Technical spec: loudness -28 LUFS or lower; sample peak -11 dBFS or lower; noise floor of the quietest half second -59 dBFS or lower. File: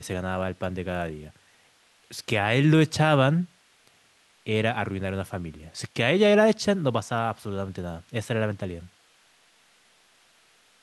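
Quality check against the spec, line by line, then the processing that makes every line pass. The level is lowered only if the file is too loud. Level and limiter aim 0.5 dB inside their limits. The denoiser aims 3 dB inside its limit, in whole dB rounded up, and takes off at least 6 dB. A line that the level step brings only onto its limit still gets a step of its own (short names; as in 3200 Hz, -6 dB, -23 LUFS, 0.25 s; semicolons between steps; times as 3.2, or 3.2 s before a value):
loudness -25.0 LUFS: fail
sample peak -5.5 dBFS: fail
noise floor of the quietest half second -61 dBFS: OK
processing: gain -3.5 dB; limiter -11.5 dBFS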